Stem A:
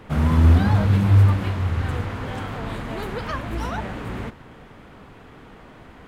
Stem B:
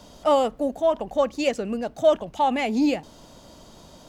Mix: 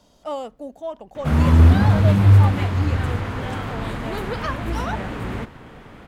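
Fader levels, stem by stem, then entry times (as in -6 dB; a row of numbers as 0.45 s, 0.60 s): +2.5 dB, -9.5 dB; 1.15 s, 0.00 s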